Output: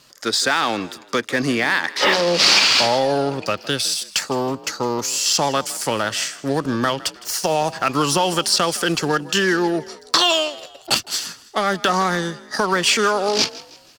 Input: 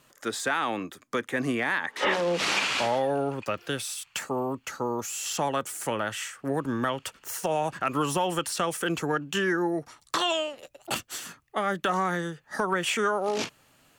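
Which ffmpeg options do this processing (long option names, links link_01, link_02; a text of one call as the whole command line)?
ffmpeg -i in.wav -filter_complex "[0:a]asplit=2[link_01][link_02];[link_02]acrusher=bits=4:mix=0:aa=0.5,volume=-11dB[link_03];[link_01][link_03]amix=inputs=2:normalize=0,equalizer=frequency=4800:width=1.9:gain=14.5,asplit=4[link_04][link_05][link_06][link_07];[link_05]adelay=160,afreqshift=40,volume=-19dB[link_08];[link_06]adelay=320,afreqshift=80,volume=-26.7dB[link_09];[link_07]adelay=480,afreqshift=120,volume=-34.5dB[link_10];[link_04][link_08][link_09][link_10]amix=inputs=4:normalize=0,volume=5dB" out.wav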